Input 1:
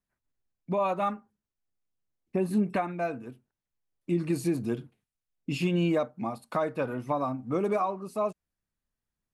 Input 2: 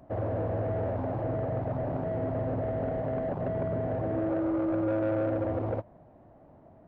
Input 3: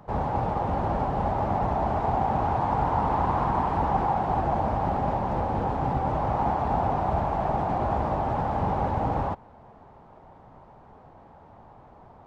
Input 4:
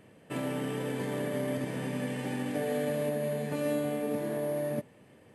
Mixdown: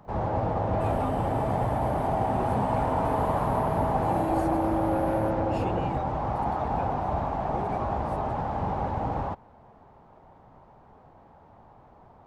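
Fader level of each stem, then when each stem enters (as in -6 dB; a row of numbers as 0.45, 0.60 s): -10.5, 0.0, -3.0, -7.5 dB; 0.00, 0.05, 0.00, 0.50 s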